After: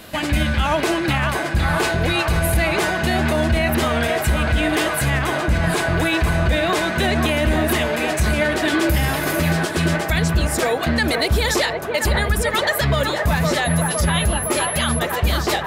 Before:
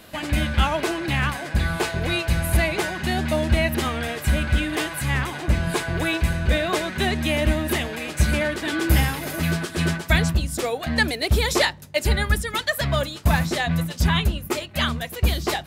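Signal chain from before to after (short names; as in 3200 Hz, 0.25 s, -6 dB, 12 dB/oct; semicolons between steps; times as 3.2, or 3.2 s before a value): 13.64–14.98 whine 11000 Hz -31 dBFS; band-limited delay 0.511 s, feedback 75%, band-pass 820 Hz, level -5.5 dB; limiter -16 dBFS, peak gain reduction 10.5 dB; gain +6.5 dB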